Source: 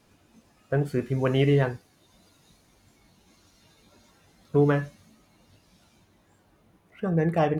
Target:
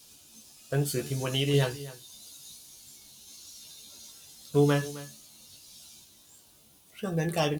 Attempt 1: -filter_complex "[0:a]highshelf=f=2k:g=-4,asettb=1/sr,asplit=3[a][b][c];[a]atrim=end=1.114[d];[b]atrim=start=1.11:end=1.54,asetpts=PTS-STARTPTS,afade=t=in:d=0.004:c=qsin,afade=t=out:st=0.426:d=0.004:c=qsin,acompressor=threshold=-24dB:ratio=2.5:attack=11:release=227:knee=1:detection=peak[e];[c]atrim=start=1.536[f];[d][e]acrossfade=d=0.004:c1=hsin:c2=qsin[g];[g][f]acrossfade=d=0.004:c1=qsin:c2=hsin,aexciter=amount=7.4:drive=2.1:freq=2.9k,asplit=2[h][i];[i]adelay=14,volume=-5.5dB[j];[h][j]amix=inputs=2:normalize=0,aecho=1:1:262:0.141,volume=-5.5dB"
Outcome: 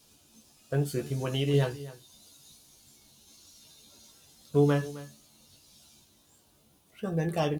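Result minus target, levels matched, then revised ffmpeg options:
4000 Hz band -5.5 dB
-filter_complex "[0:a]highshelf=f=2k:g=4.5,asettb=1/sr,asplit=3[a][b][c];[a]atrim=end=1.114[d];[b]atrim=start=1.11:end=1.54,asetpts=PTS-STARTPTS,afade=t=in:d=0.004:c=qsin,afade=t=out:st=0.426:d=0.004:c=qsin,acompressor=threshold=-24dB:ratio=2.5:attack=11:release=227:knee=1:detection=peak[e];[c]atrim=start=1.536[f];[d][e]acrossfade=d=0.004:c1=hsin:c2=qsin[g];[g][f]acrossfade=d=0.004:c1=qsin:c2=hsin,aexciter=amount=7.4:drive=2.1:freq=2.9k,asplit=2[h][i];[i]adelay=14,volume=-5.5dB[j];[h][j]amix=inputs=2:normalize=0,aecho=1:1:262:0.141,volume=-5.5dB"

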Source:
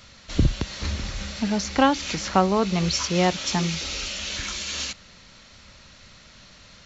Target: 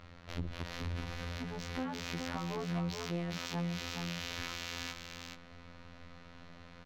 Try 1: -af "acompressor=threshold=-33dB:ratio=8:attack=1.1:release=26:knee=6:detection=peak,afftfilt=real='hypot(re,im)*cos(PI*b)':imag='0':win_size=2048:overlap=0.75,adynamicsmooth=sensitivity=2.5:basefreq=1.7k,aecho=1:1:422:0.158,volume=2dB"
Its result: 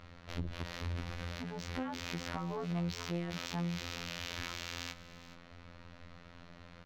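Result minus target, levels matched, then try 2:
echo-to-direct -10.5 dB
-af "acompressor=threshold=-33dB:ratio=8:attack=1.1:release=26:knee=6:detection=peak,afftfilt=real='hypot(re,im)*cos(PI*b)':imag='0':win_size=2048:overlap=0.75,adynamicsmooth=sensitivity=2.5:basefreq=1.7k,aecho=1:1:422:0.531,volume=2dB"

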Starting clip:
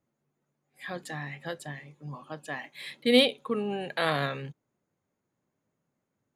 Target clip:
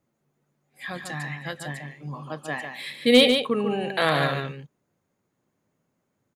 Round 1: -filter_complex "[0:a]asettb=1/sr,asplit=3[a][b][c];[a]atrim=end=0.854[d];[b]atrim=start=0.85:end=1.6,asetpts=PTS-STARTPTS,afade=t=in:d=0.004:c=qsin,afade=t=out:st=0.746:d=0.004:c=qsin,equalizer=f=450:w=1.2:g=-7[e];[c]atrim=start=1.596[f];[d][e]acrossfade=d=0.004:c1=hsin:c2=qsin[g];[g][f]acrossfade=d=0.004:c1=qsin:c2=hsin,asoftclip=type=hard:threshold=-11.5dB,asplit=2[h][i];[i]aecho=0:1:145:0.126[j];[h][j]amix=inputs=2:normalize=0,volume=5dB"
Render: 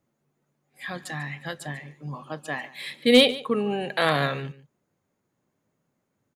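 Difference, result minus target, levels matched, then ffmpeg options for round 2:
echo-to-direct -11.5 dB
-filter_complex "[0:a]asettb=1/sr,asplit=3[a][b][c];[a]atrim=end=0.854[d];[b]atrim=start=0.85:end=1.6,asetpts=PTS-STARTPTS,afade=t=in:d=0.004:c=qsin,afade=t=out:st=0.746:d=0.004:c=qsin,equalizer=f=450:w=1.2:g=-7[e];[c]atrim=start=1.596[f];[d][e]acrossfade=d=0.004:c1=hsin:c2=qsin[g];[g][f]acrossfade=d=0.004:c1=qsin:c2=hsin,asoftclip=type=hard:threshold=-11.5dB,asplit=2[h][i];[i]aecho=0:1:145:0.473[j];[h][j]amix=inputs=2:normalize=0,volume=5dB"

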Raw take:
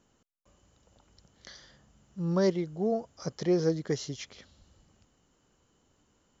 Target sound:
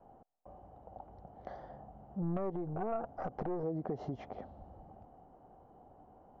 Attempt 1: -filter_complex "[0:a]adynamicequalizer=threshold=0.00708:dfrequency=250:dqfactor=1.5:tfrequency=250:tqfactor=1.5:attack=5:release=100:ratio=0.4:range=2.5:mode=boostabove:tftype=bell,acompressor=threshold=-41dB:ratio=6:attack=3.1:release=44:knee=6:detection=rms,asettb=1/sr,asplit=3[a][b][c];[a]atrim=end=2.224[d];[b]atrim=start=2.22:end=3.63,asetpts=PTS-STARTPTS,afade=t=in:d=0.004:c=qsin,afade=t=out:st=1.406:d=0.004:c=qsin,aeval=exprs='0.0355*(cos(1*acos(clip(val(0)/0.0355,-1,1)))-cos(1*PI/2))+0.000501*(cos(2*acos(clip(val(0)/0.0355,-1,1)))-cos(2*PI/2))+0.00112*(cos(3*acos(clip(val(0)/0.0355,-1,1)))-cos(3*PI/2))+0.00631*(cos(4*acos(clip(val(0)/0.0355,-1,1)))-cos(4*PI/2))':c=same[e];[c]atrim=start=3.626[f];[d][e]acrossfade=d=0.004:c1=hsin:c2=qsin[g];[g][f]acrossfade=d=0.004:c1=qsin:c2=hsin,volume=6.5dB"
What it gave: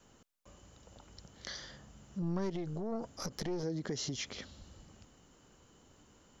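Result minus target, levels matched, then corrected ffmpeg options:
1000 Hz band -8.0 dB
-filter_complex "[0:a]adynamicequalizer=threshold=0.00708:dfrequency=250:dqfactor=1.5:tfrequency=250:tqfactor=1.5:attack=5:release=100:ratio=0.4:range=2.5:mode=boostabove:tftype=bell,lowpass=f=750:t=q:w=8,acompressor=threshold=-41dB:ratio=6:attack=3.1:release=44:knee=6:detection=rms,asettb=1/sr,asplit=3[a][b][c];[a]atrim=end=2.224[d];[b]atrim=start=2.22:end=3.63,asetpts=PTS-STARTPTS,afade=t=in:d=0.004:c=qsin,afade=t=out:st=1.406:d=0.004:c=qsin,aeval=exprs='0.0355*(cos(1*acos(clip(val(0)/0.0355,-1,1)))-cos(1*PI/2))+0.000501*(cos(2*acos(clip(val(0)/0.0355,-1,1)))-cos(2*PI/2))+0.00112*(cos(3*acos(clip(val(0)/0.0355,-1,1)))-cos(3*PI/2))+0.00631*(cos(4*acos(clip(val(0)/0.0355,-1,1)))-cos(4*PI/2))':c=same[e];[c]atrim=start=3.626[f];[d][e]acrossfade=d=0.004:c1=hsin:c2=qsin[g];[g][f]acrossfade=d=0.004:c1=qsin:c2=hsin,volume=6.5dB"

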